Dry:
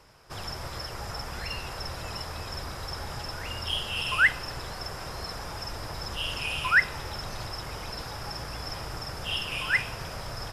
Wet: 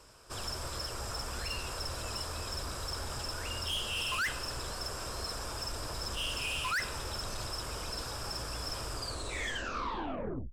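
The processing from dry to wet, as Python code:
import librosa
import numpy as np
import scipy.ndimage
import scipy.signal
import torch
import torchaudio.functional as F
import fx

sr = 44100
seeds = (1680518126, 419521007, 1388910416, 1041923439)

y = fx.tape_stop_end(x, sr, length_s=1.64)
y = fx.graphic_eq_31(y, sr, hz=(100, 160, 800, 2000, 8000), db=(-4, -11, -6, -8, 11))
y = 10.0 ** (-29.5 / 20.0) * np.tanh(y / 10.0 ** (-29.5 / 20.0))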